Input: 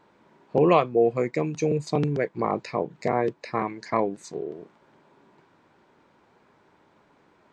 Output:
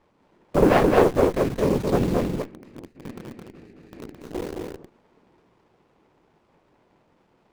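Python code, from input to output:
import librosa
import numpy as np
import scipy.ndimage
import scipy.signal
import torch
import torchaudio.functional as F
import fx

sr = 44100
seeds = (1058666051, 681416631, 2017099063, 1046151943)

p1 = fx.vowel_filter(x, sr, vowel='i', at=(2.2, 4.2), fade=0.02)
p2 = fx.whisperise(p1, sr, seeds[0])
p3 = fx.comb_fb(p2, sr, f0_hz=180.0, decay_s=0.65, harmonics='all', damping=0.0, mix_pct=40)
p4 = fx.quant_dither(p3, sr, seeds[1], bits=6, dither='none')
p5 = p3 + (p4 * librosa.db_to_amplitude(-3.0))
p6 = p5 + 10.0 ** (-3.0 / 20.0) * np.pad(p5, (int(216 * sr / 1000.0), 0))[:len(p5)]
p7 = fx.running_max(p6, sr, window=17)
y = p7 * librosa.db_to_amplitude(1.5)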